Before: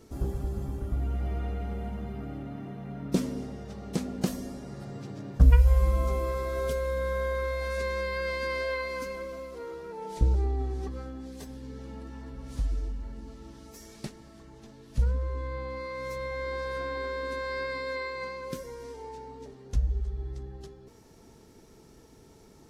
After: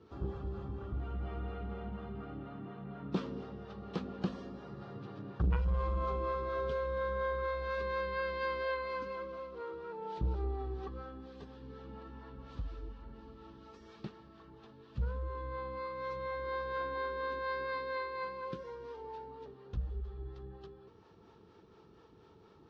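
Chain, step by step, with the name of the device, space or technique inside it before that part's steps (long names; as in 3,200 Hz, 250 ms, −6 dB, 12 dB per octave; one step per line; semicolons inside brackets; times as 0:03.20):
guitar amplifier with harmonic tremolo (two-band tremolo in antiphase 4.2 Hz, depth 50%, crossover 430 Hz; soft clipping −18.5 dBFS, distortion −11 dB; loudspeaker in its box 88–3,700 Hz, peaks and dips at 140 Hz −5 dB, 250 Hz −9 dB, 630 Hz −6 dB, 1,200 Hz +6 dB, 2,100 Hz −8 dB)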